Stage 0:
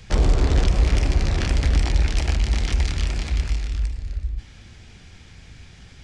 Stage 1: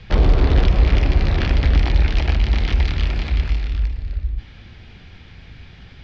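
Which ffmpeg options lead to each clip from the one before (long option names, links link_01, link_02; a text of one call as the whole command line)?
ffmpeg -i in.wav -af "lowpass=frequency=4200:width=0.5412,lowpass=frequency=4200:width=1.3066,volume=3.5dB" out.wav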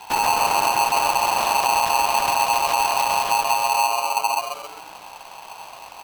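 ffmpeg -i in.wav -filter_complex "[0:a]alimiter=limit=-14dB:level=0:latency=1:release=130,asplit=2[link_01][link_02];[link_02]asplit=5[link_03][link_04][link_05][link_06][link_07];[link_03]adelay=130,afreqshift=130,volume=-7dB[link_08];[link_04]adelay=260,afreqshift=260,volume=-15.2dB[link_09];[link_05]adelay=390,afreqshift=390,volume=-23.4dB[link_10];[link_06]adelay=520,afreqshift=520,volume=-31.5dB[link_11];[link_07]adelay=650,afreqshift=650,volume=-39.7dB[link_12];[link_08][link_09][link_10][link_11][link_12]amix=inputs=5:normalize=0[link_13];[link_01][link_13]amix=inputs=2:normalize=0,aeval=exprs='val(0)*sgn(sin(2*PI*880*n/s))':channel_layout=same" out.wav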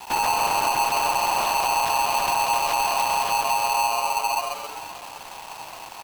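ffmpeg -i in.wav -af "aeval=exprs='(tanh(7.08*val(0)+0.05)-tanh(0.05))/7.08':channel_layout=same,acrusher=bits=6:mix=0:aa=0.000001,aecho=1:1:520:0.178" out.wav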